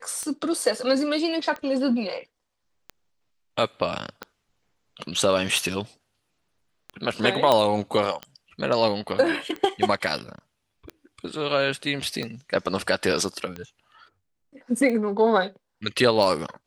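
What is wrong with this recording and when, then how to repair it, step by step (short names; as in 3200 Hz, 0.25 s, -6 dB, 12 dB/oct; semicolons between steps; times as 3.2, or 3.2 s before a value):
tick 45 rpm -19 dBFS
7.52 pop -7 dBFS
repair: de-click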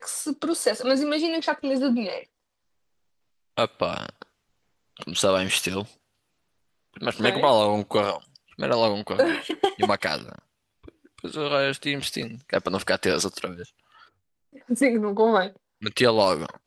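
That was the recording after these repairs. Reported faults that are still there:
none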